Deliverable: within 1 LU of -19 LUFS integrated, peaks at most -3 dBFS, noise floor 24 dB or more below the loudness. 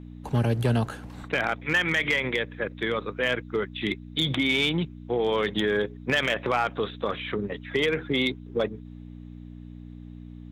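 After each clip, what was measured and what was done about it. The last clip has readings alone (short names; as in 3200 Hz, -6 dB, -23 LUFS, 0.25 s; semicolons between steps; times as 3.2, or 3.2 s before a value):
clipped 0.3%; flat tops at -16.0 dBFS; hum 60 Hz; harmonics up to 300 Hz; hum level -39 dBFS; loudness -26.5 LUFS; peak -16.0 dBFS; loudness target -19.0 LUFS
-> clip repair -16 dBFS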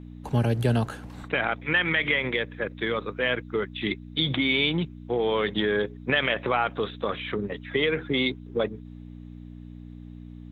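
clipped 0.0%; hum 60 Hz; harmonics up to 300 Hz; hum level -39 dBFS
-> de-hum 60 Hz, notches 5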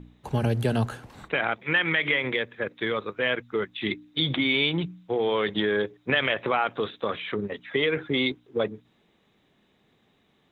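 hum none; loudness -26.5 LUFS; peak -9.5 dBFS; loudness target -19.0 LUFS
-> gain +7.5 dB; limiter -3 dBFS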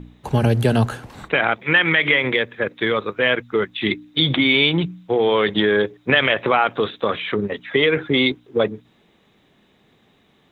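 loudness -19.0 LUFS; peak -3.0 dBFS; noise floor -59 dBFS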